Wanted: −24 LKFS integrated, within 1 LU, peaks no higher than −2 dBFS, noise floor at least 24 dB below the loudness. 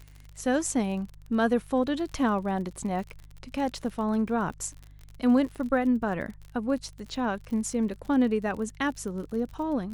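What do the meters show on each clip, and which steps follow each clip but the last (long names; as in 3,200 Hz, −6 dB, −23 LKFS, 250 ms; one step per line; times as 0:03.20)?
crackle rate 43 per second; mains hum 50 Hz; hum harmonics up to 150 Hz; level of the hum −47 dBFS; integrated loudness −28.5 LKFS; sample peak −12.0 dBFS; target loudness −24.0 LKFS
→ click removal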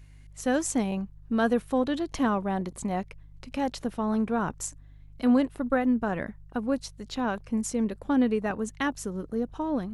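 crackle rate 0.20 per second; mains hum 50 Hz; hum harmonics up to 150 Hz; level of the hum −48 dBFS
→ hum removal 50 Hz, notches 3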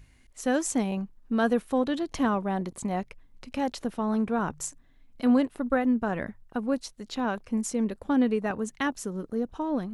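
mains hum none found; integrated loudness −28.5 LKFS; sample peak −12.0 dBFS; target loudness −24.0 LKFS
→ level +4.5 dB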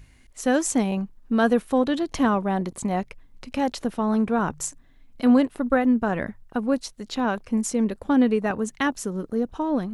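integrated loudness −24.0 LKFS; sample peak −7.5 dBFS; background noise floor −54 dBFS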